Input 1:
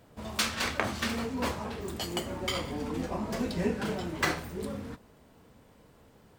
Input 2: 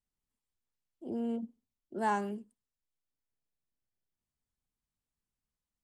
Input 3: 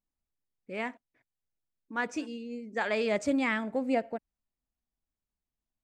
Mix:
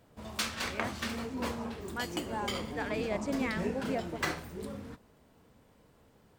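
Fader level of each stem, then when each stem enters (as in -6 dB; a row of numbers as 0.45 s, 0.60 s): -4.5 dB, -7.0 dB, -6.5 dB; 0.00 s, 0.30 s, 0.00 s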